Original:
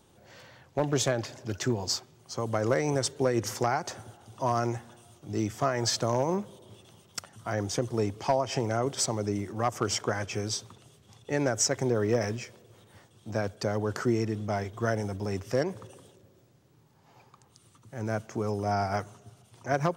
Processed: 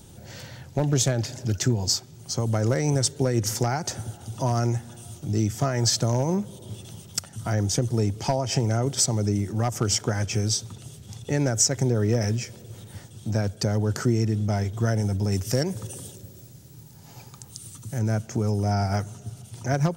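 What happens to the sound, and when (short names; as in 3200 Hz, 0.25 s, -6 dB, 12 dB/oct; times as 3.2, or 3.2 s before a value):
15.32–17.99 high shelf 5200 Hz +9 dB
whole clip: tone controls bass +11 dB, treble +9 dB; notch 1100 Hz, Q 7.2; compressor 1.5:1, threshold -39 dBFS; gain +6.5 dB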